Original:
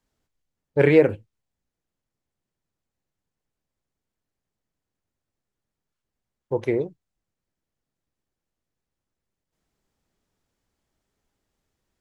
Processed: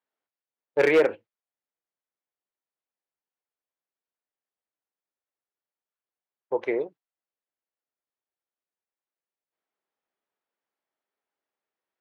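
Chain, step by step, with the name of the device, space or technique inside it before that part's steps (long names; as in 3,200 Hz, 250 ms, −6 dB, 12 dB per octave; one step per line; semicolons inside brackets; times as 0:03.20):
walkie-talkie (band-pass filter 510–2,800 Hz; hard clipping −16 dBFS, distortion −13 dB; noise gate −47 dBFS, range −9 dB)
level +2.5 dB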